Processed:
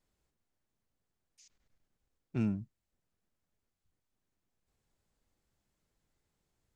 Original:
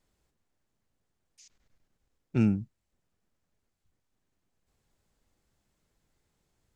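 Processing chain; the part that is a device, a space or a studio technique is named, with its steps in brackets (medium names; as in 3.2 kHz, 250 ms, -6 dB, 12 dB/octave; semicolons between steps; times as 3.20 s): parallel distortion (in parallel at -7.5 dB: hard clipper -31 dBFS, distortion -4 dB); on the sum: trim -8.5 dB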